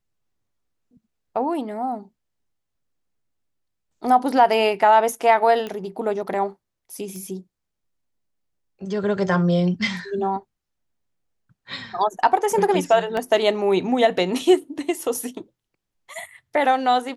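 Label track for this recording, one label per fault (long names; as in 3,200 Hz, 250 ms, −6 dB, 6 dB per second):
5.670000	5.670000	click −17 dBFS
7.160000	7.160000	click −24 dBFS
13.170000	13.170000	drop-out 2.6 ms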